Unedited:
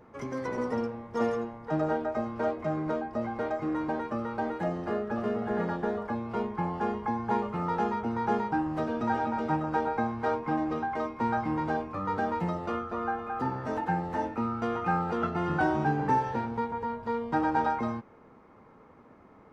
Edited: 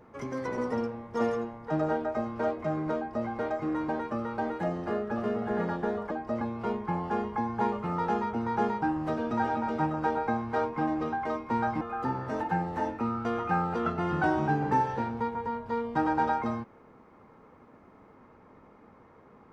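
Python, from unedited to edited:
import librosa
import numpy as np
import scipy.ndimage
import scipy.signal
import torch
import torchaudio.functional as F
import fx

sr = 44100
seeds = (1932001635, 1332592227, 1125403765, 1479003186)

y = fx.edit(x, sr, fx.duplicate(start_s=2.97, length_s=0.3, to_s=6.11),
    fx.cut(start_s=11.51, length_s=1.67), tone=tone)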